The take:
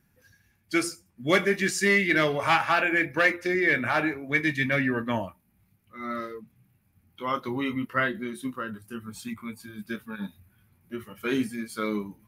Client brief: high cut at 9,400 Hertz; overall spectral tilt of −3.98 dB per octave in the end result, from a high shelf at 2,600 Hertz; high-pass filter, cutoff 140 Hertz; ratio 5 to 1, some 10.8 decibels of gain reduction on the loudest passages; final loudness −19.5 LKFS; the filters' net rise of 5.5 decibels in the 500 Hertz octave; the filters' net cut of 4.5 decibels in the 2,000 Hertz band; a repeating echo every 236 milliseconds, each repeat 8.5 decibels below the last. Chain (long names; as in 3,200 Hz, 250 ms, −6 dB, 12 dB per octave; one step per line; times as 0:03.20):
high-pass filter 140 Hz
low-pass filter 9,400 Hz
parametric band 500 Hz +7.5 dB
parametric band 2,000 Hz −9 dB
high-shelf EQ 2,600 Hz +7.5 dB
downward compressor 5 to 1, threshold −25 dBFS
repeating echo 236 ms, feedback 38%, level −8.5 dB
level +11 dB